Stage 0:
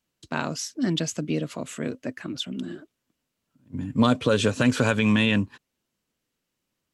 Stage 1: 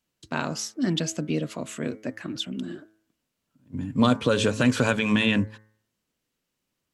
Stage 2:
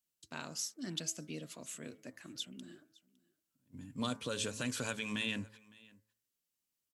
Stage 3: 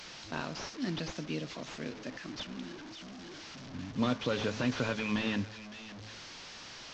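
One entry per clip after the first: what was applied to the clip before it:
de-hum 107.9 Hz, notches 21
pre-emphasis filter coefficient 0.8; delay 559 ms -24 dB; trim -4 dB
one-bit delta coder 32 kbps, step -48 dBFS; trim +7.5 dB

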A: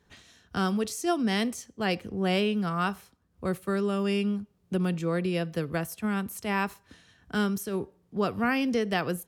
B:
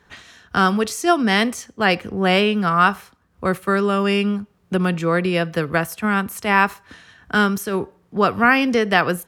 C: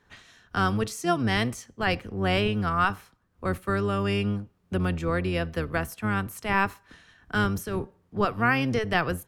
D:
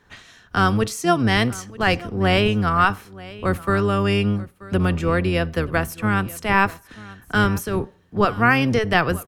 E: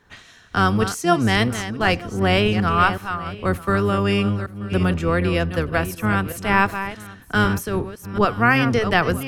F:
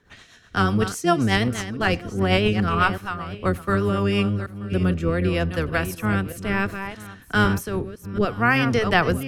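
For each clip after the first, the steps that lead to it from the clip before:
peaking EQ 1.4 kHz +8.5 dB 2.2 oct; trim +6.5 dB
octave divider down 1 oct, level -1 dB; trim -8.5 dB
delay 932 ms -19.5 dB; trim +6.5 dB
chunks repeated in reverse 372 ms, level -10 dB
rotary cabinet horn 8 Hz, later 0.65 Hz, at 3.72 s

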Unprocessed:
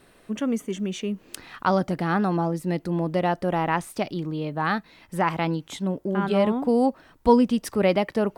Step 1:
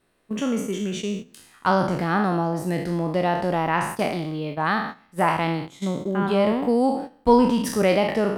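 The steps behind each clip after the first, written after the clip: spectral sustain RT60 0.77 s; gate -30 dBFS, range -14 dB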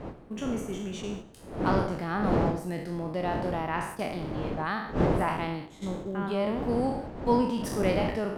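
wind noise 420 Hz -25 dBFS; modulated delay 103 ms, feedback 46%, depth 96 cents, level -19 dB; trim -8.5 dB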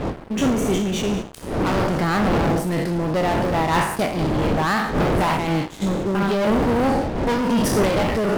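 waveshaping leveller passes 5; random flutter of the level, depth 60%

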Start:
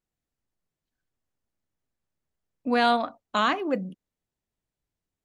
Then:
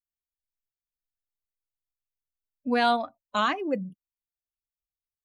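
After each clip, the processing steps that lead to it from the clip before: expander on every frequency bin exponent 1.5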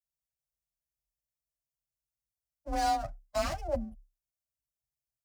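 comb filter that takes the minimum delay 9.7 ms; FFT filter 110 Hz 0 dB, 220 Hz -10 dB, 400 Hz -29 dB, 570 Hz +2 dB, 930 Hz -15 dB, 3.6 kHz -16 dB, 5.3 kHz -3 dB; frequency shift +33 Hz; trim +4.5 dB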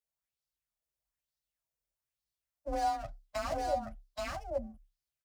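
delay 826 ms -4 dB; compression, threshold -31 dBFS, peak gain reduction 8 dB; sweeping bell 1.1 Hz 460–4600 Hz +9 dB; trim -2.5 dB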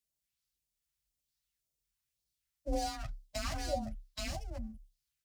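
phase shifter stages 2, 1.9 Hz, lowest notch 510–1300 Hz; trim +4.5 dB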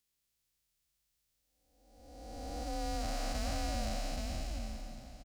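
spectral blur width 873 ms; delay 1103 ms -16.5 dB; trim +7.5 dB

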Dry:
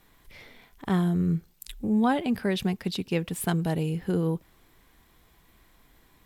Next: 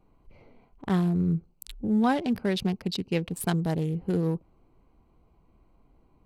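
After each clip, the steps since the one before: local Wiener filter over 25 samples; dynamic bell 5.2 kHz, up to +6 dB, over -54 dBFS, Q 1.6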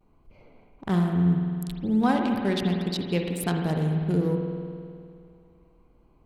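vibrato 0.7 Hz 41 cents; reverberation RT60 2.3 s, pre-delay 51 ms, DRR 2.5 dB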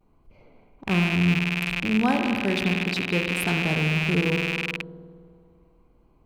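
rattle on loud lows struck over -37 dBFS, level -15 dBFS

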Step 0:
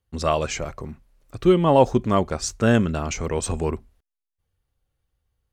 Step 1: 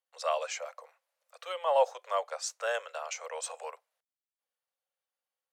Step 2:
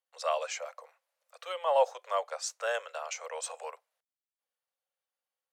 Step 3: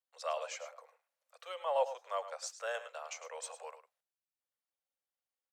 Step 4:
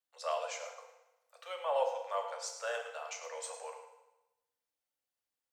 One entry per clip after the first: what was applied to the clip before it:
steep high-pass 490 Hz 96 dB/octave; trim -8 dB
no audible change
delay 105 ms -12.5 dB; trim -6.5 dB
FDN reverb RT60 0.98 s, high-frequency decay 0.9×, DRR 3 dB

